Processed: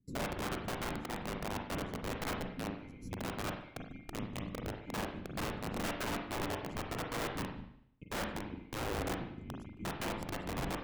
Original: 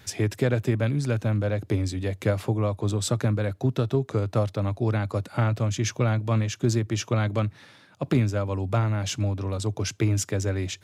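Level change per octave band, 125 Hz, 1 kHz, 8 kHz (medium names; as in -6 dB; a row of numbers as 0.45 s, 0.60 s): -20.5 dB, -5.0 dB, -13.0 dB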